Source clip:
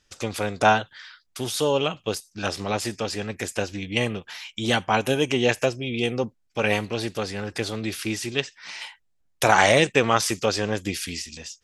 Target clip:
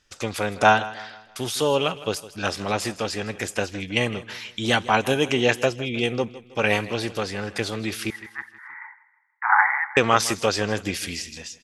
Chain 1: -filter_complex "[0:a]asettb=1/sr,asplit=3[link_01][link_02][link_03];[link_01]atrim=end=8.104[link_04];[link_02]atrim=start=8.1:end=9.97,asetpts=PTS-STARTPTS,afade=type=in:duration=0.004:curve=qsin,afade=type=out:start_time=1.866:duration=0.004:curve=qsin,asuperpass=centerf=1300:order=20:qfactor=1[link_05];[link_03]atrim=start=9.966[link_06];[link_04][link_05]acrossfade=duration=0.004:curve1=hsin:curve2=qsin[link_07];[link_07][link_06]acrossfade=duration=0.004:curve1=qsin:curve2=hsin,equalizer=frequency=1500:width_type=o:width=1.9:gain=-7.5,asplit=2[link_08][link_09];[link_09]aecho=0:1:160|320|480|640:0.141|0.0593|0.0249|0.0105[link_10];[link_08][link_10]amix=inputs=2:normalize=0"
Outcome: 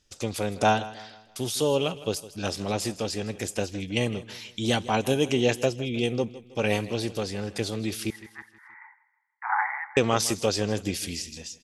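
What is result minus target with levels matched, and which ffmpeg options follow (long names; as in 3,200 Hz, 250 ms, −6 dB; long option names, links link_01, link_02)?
2,000 Hz band −5.0 dB
-filter_complex "[0:a]asettb=1/sr,asplit=3[link_01][link_02][link_03];[link_01]atrim=end=8.104[link_04];[link_02]atrim=start=8.1:end=9.97,asetpts=PTS-STARTPTS,afade=type=in:duration=0.004:curve=qsin,afade=type=out:start_time=1.866:duration=0.004:curve=qsin,asuperpass=centerf=1300:order=20:qfactor=1[link_05];[link_03]atrim=start=9.966[link_06];[link_04][link_05]acrossfade=duration=0.004:curve1=hsin:curve2=qsin[link_07];[link_07][link_06]acrossfade=duration=0.004:curve1=qsin:curve2=hsin,equalizer=frequency=1500:width_type=o:width=1.9:gain=3,asplit=2[link_08][link_09];[link_09]aecho=0:1:160|320|480|640:0.141|0.0593|0.0249|0.0105[link_10];[link_08][link_10]amix=inputs=2:normalize=0"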